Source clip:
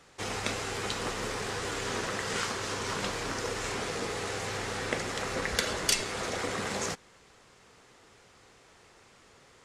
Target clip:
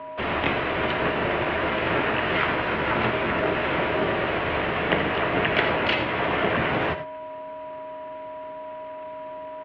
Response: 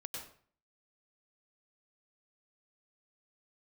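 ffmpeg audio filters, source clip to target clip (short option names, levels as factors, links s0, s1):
-filter_complex "[0:a]aeval=exprs='val(0)+0.00562*sin(2*PI*700*n/s)':c=same,asplit=3[s0][s1][s2];[s1]asetrate=22050,aresample=44100,atempo=2,volume=0.224[s3];[s2]asetrate=66075,aresample=44100,atempo=0.66742,volume=1[s4];[s0][s3][s4]amix=inputs=3:normalize=0,highpass=f=150:t=q:w=0.5412,highpass=f=150:t=q:w=1.307,lowpass=f=3000:t=q:w=0.5176,lowpass=f=3000:t=q:w=0.7071,lowpass=f=3000:t=q:w=1.932,afreqshift=-74,asplit=2[s5][s6];[1:a]atrim=start_sample=2205,afade=t=out:st=0.18:d=0.01,atrim=end_sample=8379,asetrate=52920,aresample=44100[s7];[s6][s7]afir=irnorm=-1:irlink=0,volume=0.891[s8];[s5][s8]amix=inputs=2:normalize=0,volume=1.68"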